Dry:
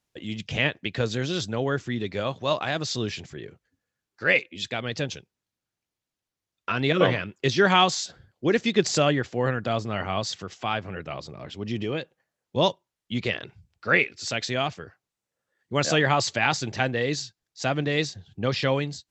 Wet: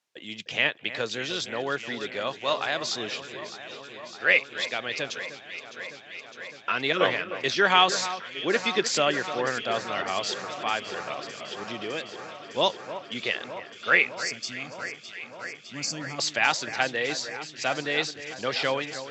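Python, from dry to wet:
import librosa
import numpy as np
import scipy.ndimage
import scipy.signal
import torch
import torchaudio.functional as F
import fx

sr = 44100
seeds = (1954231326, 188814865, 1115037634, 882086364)

y = fx.weighting(x, sr, curve='A')
y = fx.spec_box(y, sr, start_s=14.23, length_s=1.96, low_hz=310.0, high_hz=4300.0, gain_db=-20)
y = fx.echo_alternate(y, sr, ms=304, hz=2200.0, feedback_pct=88, wet_db=-12.0)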